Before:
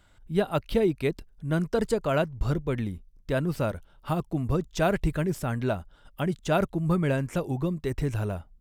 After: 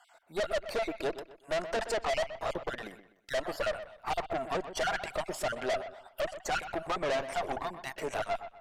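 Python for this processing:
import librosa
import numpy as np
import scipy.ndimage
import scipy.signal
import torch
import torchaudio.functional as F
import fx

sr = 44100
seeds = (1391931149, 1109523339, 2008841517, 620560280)

p1 = fx.spec_dropout(x, sr, seeds[0], share_pct=38)
p2 = fx.highpass_res(p1, sr, hz=670.0, q=4.9)
p3 = fx.tube_stage(p2, sr, drive_db=35.0, bias=0.75)
p4 = fx.env_lowpass_down(p3, sr, base_hz=2600.0, full_db=-27.0)
p5 = p4 + fx.echo_wet_lowpass(p4, sr, ms=125, feedback_pct=31, hz=3100.0, wet_db=-11.5, dry=0)
y = p5 * 10.0 ** (7.0 / 20.0)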